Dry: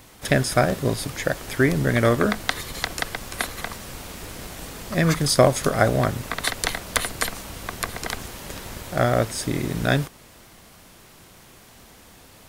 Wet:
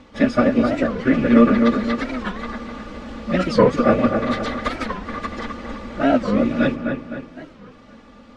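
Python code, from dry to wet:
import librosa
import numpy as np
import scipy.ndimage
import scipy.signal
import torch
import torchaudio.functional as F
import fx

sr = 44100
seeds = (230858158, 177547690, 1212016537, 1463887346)

p1 = fx.rattle_buzz(x, sr, strikes_db=-22.0, level_db=-22.0)
p2 = fx.high_shelf(p1, sr, hz=10000.0, db=-10.5)
p3 = p2 + 0.64 * np.pad(p2, (int(3.5 * sr / 1000.0), 0))[:len(p2)]
p4 = fx.stretch_vocoder_free(p3, sr, factor=0.67)
p5 = fx.air_absorb(p4, sr, metres=150.0)
p6 = fx.small_body(p5, sr, hz=(230.0, 450.0, 1200.0), ring_ms=65, db=12)
p7 = p6 + fx.echo_wet_lowpass(p6, sr, ms=256, feedback_pct=46, hz=2300.0, wet_db=-4.5, dry=0)
p8 = fx.record_warp(p7, sr, rpm=45.0, depth_cents=250.0)
y = p8 * librosa.db_to_amplitude(1.5)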